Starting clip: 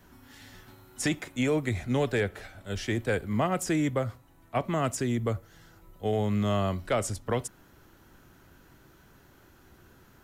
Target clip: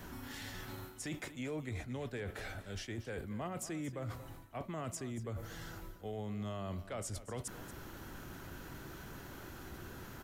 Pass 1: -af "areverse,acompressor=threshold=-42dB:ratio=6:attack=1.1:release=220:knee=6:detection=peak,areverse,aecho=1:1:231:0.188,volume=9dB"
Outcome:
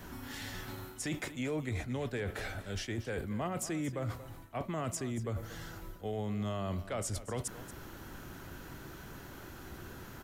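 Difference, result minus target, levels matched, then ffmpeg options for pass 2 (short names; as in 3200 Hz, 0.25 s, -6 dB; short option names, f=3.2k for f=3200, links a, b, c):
compressor: peak gain reduction -5 dB
-af "areverse,acompressor=threshold=-48dB:ratio=6:attack=1.1:release=220:knee=6:detection=peak,areverse,aecho=1:1:231:0.188,volume=9dB"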